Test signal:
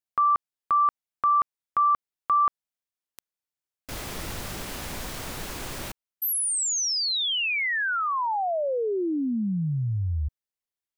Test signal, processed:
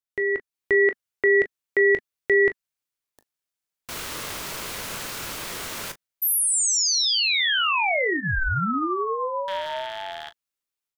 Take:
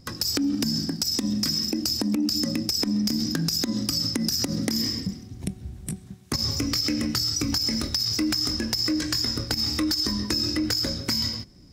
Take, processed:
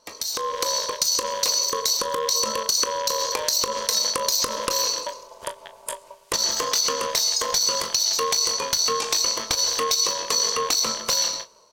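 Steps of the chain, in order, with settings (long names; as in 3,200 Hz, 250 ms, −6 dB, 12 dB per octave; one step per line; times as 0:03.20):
loose part that buzzes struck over −31 dBFS, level −28 dBFS
high-pass filter 130 Hz 12 dB per octave
low-shelf EQ 320 Hz −8 dB
notch filter 1,000 Hz, Q 10
automatic gain control gain up to 7 dB
ring modulation 770 Hz
ambience of single reflections 22 ms −13 dB, 38 ms −14.5 dB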